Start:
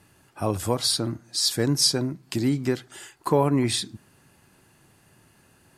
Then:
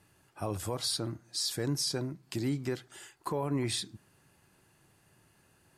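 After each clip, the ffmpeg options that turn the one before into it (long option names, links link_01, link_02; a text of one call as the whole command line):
ffmpeg -i in.wav -af "equalizer=frequency=240:width=5:gain=-5,alimiter=limit=-15.5dB:level=0:latency=1:release=21,volume=-7dB" out.wav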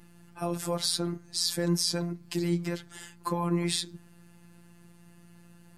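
ffmpeg -i in.wav -af "afreqshift=23,aeval=exprs='val(0)+0.002*(sin(2*PI*60*n/s)+sin(2*PI*2*60*n/s)/2+sin(2*PI*3*60*n/s)/3+sin(2*PI*4*60*n/s)/4+sin(2*PI*5*60*n/s)/5)':channel_layout=same,afftfilt=real='hypot(re,im)*cos(PI*b)':imag='0':win_size=1024:overlap=0.75,volume=7dB" out.wav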